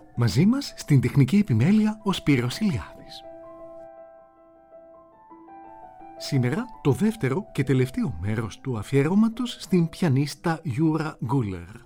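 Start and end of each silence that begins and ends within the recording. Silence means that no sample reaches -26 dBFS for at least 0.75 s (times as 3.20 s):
2.82–6.22 s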